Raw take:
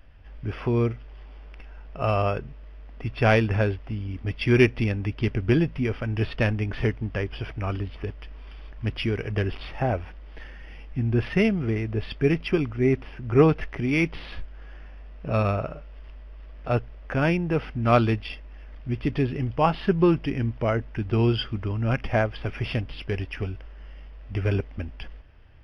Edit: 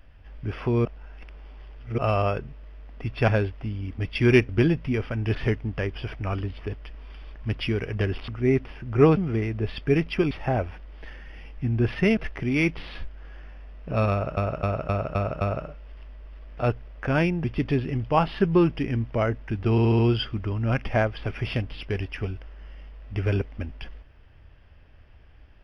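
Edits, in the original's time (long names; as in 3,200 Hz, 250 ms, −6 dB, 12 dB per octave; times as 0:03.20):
0:00.85–0:01.98: reverse
0:03.28–0:03.54: remove
0:04.75–0:05.40: remove
0:06.26–0:06.72: remove
0:09.65–0:11.51: swap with 0:12.65–0:13.54
0:15.48–0:15.74: repeat, 6 plays
0:17.51–0:18.91: remove
0:21.18: stutter 0.07 s, 5 plays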